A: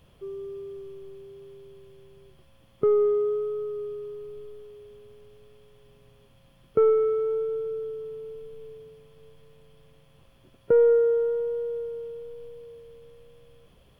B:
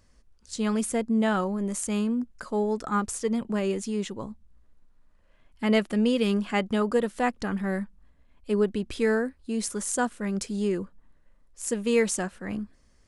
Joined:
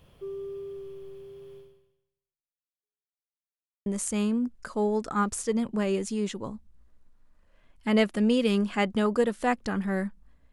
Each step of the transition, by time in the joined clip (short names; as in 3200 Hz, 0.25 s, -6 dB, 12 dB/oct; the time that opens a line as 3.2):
A
1.58–3.12 fade out exponential
3.12–3.86 mute
3.86 switch to B from 1.62 s